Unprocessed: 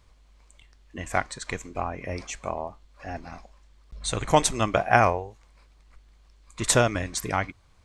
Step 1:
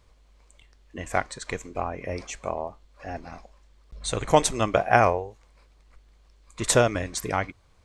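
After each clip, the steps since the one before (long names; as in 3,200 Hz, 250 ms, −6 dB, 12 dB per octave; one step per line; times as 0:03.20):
parametric band 480 Hz +4.5 dB 0.86 octaves
level −1 dB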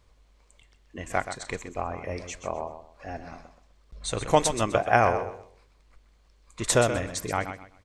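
repeating echo 127 ms, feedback 26%, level −10 dB
level −2 dB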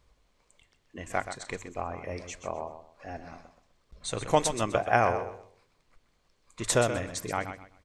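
mains-hum notches 50/100 Hz
level −3 dB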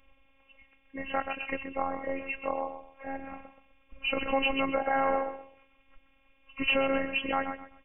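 hearing-aid frequency compression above 2,000 Hz 4 to 1
phases set to zero 270 Hz
brickwall limiter −20 dBFS, peak gain reduction 10.5 dB
level +5.5 dB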